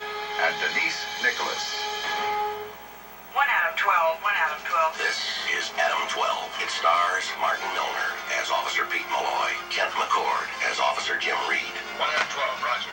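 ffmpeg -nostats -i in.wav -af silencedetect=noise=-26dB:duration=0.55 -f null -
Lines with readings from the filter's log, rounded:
silence_start: 2.62
silence_end: 3.36 | silence_duration: 0.74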